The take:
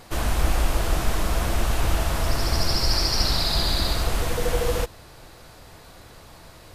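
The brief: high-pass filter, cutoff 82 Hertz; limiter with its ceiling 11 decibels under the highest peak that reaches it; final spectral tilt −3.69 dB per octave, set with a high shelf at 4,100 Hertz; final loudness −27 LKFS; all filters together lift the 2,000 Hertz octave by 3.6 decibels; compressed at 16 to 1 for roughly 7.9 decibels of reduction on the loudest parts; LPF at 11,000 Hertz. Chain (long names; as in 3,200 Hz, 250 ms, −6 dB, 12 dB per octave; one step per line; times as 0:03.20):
high-pass filter 82 Hz
low-pass filter 11,000 Hz
parametric band 2,000 Hz +5.5 dB
high-shelf EQ 4,100 Hz −4 dB
downward compressor 16 to 1, threshold −29 dBFS
level +13 dB
brickwall limiter −17.5 dBFS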